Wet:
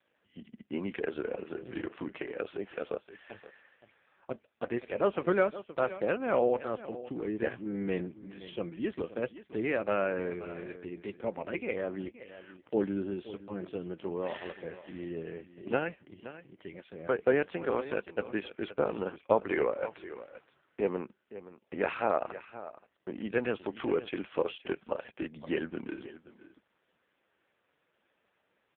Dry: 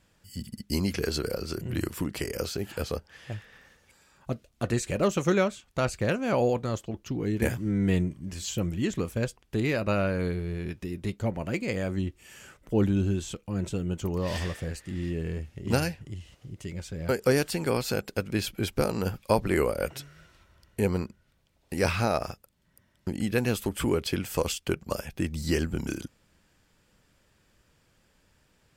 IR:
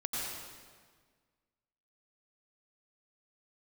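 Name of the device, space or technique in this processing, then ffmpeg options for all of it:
satellite phone: -af "highpass=330,lowpass=3100,aecho=1:1:522:0.178" -ar 8000 -c:a libopencore_amrnb -b:a 5150

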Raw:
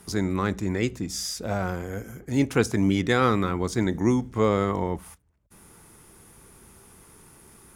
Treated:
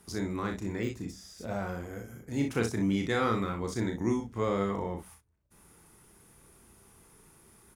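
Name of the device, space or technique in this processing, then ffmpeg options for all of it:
slapback doubling: -filter_complex "[0:a]asplit=3[s0][s1][s2];[s1]adelay=35,volume=0.562[s3];[s2]adelay=61,volume=0.376[s4];[s0][s3][s4]amix=inputs=3:normalize=0,asettb=1/sr,asplit=3[s5][s6][s7];[s5]atrim=end=0.804[s8];[s6]atrim=start=0.8:end=2.19,asetpts=PTS-STARTPTS,afade=t=in:d=0.004:c=qsin,afade=t=out:st=1.386:d=0.004:c=qsin,deesser=0.85[s9];[s7]atrim=start=2.186[s10];[s8][s9]acrossfade=d=0.004:c1=hsin:c2=qsin[s11];[s11][s10]acrossfade=d=0.004:c1=qsin:c2=hsin,volume=0.376"

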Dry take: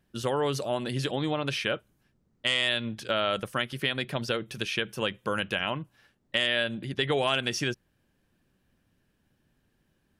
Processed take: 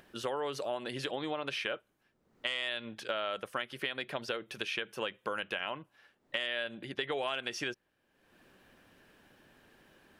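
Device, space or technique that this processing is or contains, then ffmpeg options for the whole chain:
upward and downward compression: -af "bass=f=250:g=-15,treble=f=4000:g=-7,acompressor=mode=upward:threshold=0.00398:ratio=2.5,acompressor=threshold=0.0224:ratio=3"

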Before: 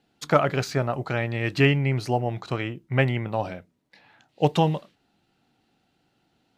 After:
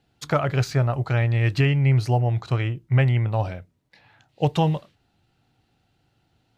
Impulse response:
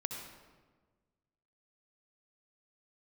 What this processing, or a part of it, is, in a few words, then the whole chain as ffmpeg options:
car stereo with a boomy subwoofer: -af "lowshelf=f=150:t=q:w=1.5:g=8.5,alimiter=limit=0.316:level=0:latency=1:release=237"

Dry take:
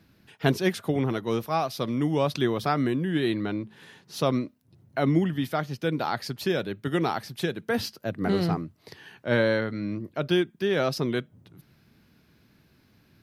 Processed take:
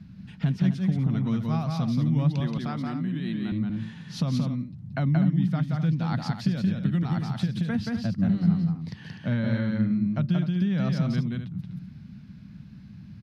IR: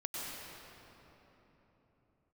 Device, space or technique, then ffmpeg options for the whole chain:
jukebox: -filter_complex "[0:a]lowpass=6300,lowshelf=f=270:t=q:w=3:g=12,acompressor=threshold=0.0447:ratio=3,asettb=1/sr,asplit=3[s0][s1][s2];[s0]atrim=end=2.404[s3];[s1]atrim=start=2.4:end=3.52,asetpts=PTS-STARTPTS,afade=t=in:d=0.004:c=qsin,afade=t=out:st=1.116:d=0.004:c=qsin,highpass=240[s4];[s2]atrim=start=3.516[s5];[s3][s4]acrossfade=d=0.004:c1=hsin:c2=qsin[s6];[s6][s5]acrossfade=d=0.004:c1=qsin:c2=hsin,aecho=1:1:177.8|250.7:0.708|0.282"

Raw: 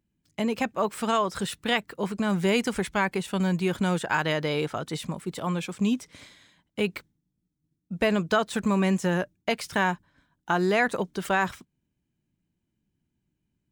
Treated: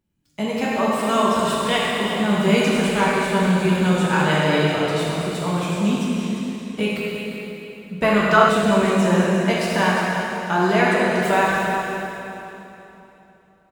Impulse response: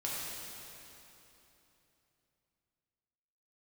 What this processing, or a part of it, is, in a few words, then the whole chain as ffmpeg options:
cave: -filter_complex "[0:a]aecho=1:1:352:0.316[s0];[1:a]atrim=start_sample=2205[s1];[s0][s1]afir=irnorm=-1:irlink=0,asettb=1/sr,asplit=3[s2][s3][s4];[s2]atrim=end=8.034[s5];[s3]atrim=start=8.03:end=8.49,asetpts=PTS-STARTPTS,afade=t=in:d=0.004:c=qsin,afade=t=out:st=0.456:d=0.004:c=qsin,equalizer=f=1200:t=o:w=0.85:g=10.5[s6];[s4]atrim=start=8.486[s7];[s5][s6]acrossfade=d=0.004:c1=hsin:c2=qsin[s8];[s8][s7]acrossfade=d=0.004:c1=qsin:c2=hsin,volume=1.41"

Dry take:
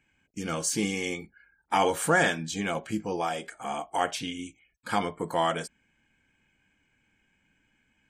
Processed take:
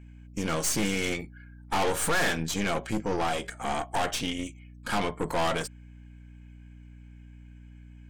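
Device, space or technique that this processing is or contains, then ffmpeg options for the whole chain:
valve amplifier with mains hum: -af "aeval=exprs='(tanh(35.5*val(0)+0.75)-tanh(0.75))/35.5':c=same,aeval=exprs='val(0)+0.002*(sin(2*PI*60*n/s)+sin(2*PI*2*60*n/s)/2+sin(2*PI*3*60*n/s)/3+sin(2*PI*4*60*n/s)/4+sin(2*PI*5*60*n/s)/5)':c=same,volume=2.37"

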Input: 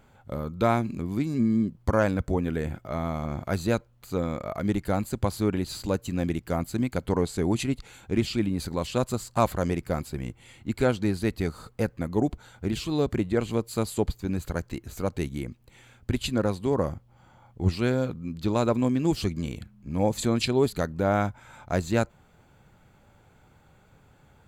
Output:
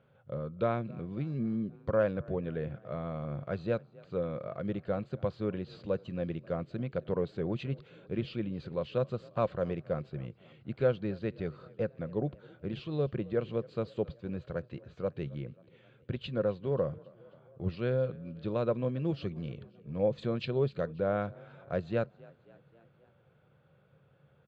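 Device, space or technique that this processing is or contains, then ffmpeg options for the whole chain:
frequency-shifting delay pedal into a guitar cabinet: -filter_complex "[0:a]asplit=5[s0][s1][s2][s3][s4];[s1]adelay=268,afreqshift=37,volume=0.0631[s5];[s2]adelay=536,afreqshift=74,volume=0.0385[s6];[s3]adelay=804,afreqshift=111,volume=0.0234[s7];[s4]adelay=1072,afreqshift=148,volume=0.0143[s8];[s0][s5][s6][s7][s8]amix=inputs=5:normalize=0,highpass=110,equalizer=f=140:t=q:w=4:g=8,equalizer=f=270:t=q:w=4:g=-8,equalizer=f=520:t=q:w=4:g=8,equalizer=f=860:t=q:w=4:g=-9,equalizer=f=2100:t=q:w=4:g=-6,lowpass=f=3400:w=0.5412,lowpass=f=3400:w=1.3066,volume=0.422"

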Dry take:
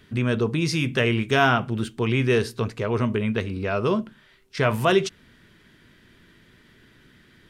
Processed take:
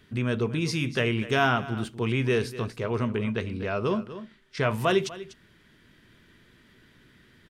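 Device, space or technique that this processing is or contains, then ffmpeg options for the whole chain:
ducked delay: -filter_complex "[0:a]asettb=1/sr,asplit=3[s0][s1][s2];[s0]atrim=end=3.044[s3];[s1]atrim=start=3.04:end=4.78,asetpts=PTS-STARTPTS,afade=t=in:d=0.004:c=qsin,afade=t=out:st=1.736:d=0.004:c=qsin,lowpass=10000[s4];[s2]atrim=start=4.776[s5];[s3][s4]acrossfade=d=0.004:c1=hsin:c2=qsin[s6];[s6][s5]acrossfade=d=0.004:c1=qsin:c2=hsin,asplit=3[s7][s8][s9];[s8]adelay=245,volume=0.562[s10];[s9]apad=whole_len=341177[s11];[s10][s11]sidechaincompress=threshold=0.0398:ratio=8:attack=24:release=1020[s12];[s7][s12]amix=inputs=2:normalize=0,volume=0.631"

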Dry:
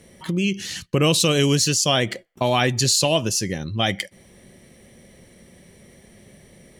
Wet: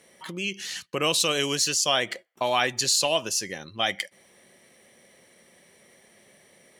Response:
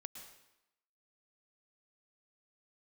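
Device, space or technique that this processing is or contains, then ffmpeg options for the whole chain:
filter by subtraction: -filter_complex "[0:a]asplit=2[s0][s1];[s1]lowpass=1000,volume=-1[s2];[s0][s2]amix=inputs=2:normalize=0,volume=0.668"

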